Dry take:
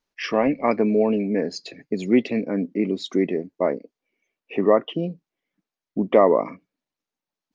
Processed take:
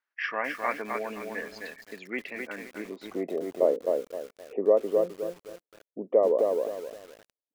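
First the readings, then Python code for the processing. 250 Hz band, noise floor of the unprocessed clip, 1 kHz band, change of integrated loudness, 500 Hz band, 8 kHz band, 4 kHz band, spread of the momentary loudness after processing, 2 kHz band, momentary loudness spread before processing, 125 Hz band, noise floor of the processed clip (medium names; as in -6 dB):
-15.0 dB, under -85 dBFS, -8.0 dB, -7.0 dB, -4.5 dB, no reading, under -10 dB, 18 LU, 0.0 dB, 12 LU, under -15 dB, under -85 dBFS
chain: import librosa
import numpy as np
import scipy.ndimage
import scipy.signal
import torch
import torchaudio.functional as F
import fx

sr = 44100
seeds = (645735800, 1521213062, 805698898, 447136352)

y = fx.filter_sweep_bandpass(x, sr, from_hz=1600.0, to_hz=500.0, start_s=2.57, end_s=3.56, q=3.0)
y = fx.rider(y, sr, range_db=4, speed_s=0.5)
y = fx.echo_crushed(y, sr, ms=260, feedback_pct=35, bits=8, wet_db=-3.5)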